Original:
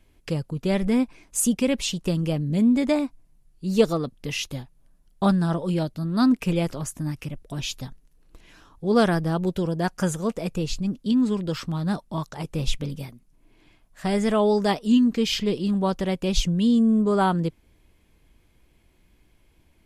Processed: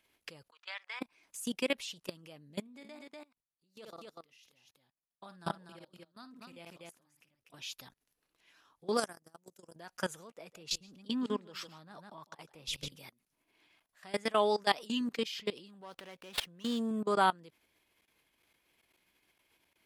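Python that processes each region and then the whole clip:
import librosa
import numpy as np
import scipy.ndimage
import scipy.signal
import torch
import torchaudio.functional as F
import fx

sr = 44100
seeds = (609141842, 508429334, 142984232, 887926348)

y = fx.chain(x, sr, fx.highpass(hz=980.0, slope=24),
    fx.air_absorb(metres=140.0), at=(0.51, 1.01))
y = fx.chain(y, sr, fx.level_steps(step_db=23),
    fx.echo_multitap(ms=(54, 244), db=(-14.0, -6.5)), at=(2.6, 7.54))
y = fx.chain(y, sr, fx.high_shelf_res(hz=4900.0, db=11.0, q=3.0),
    fx.level_steps(step_db=21),
    fx.highpass(hz=65.0, slope=12), at=(8.97, 9.76))
y = fx.chain(y, sr, fx.echo_single(ms=152, db=-11.5),
    fx.band_widen(depth_pct=100), at=(10.3, 12.92))
y = fx.chain(y, sr, fx.low_shelf(hz=200.0, db=-5.0),
    fx.sustainer(db_per_s=70.0), at=(14.32, 15.01))
y = fx.chain(y, sr, fx.low_shelf(hz=280.0, db=-4.0),
    fx.running_max(window=5), at=(15.81, 16.91))
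y = fx.level_steps(y, sr, step_db=21)
y = fx.highpass(y, sr, hz=1200.0, slope=6)
y = fx.peak_eq(y, sr, hz=7600.0, db=-4.5, octaves=0.76)
y = y * 10.0 ** (2.0 / 20.0)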